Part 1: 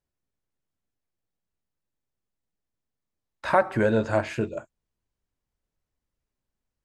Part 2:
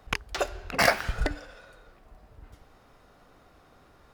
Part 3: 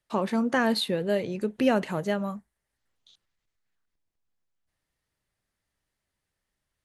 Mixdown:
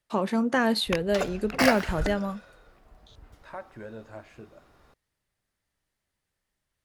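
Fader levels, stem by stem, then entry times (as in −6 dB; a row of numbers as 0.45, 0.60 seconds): −19.5, −2.0, +0.5 decibels; 0.00, 0.80, 0.00 seconds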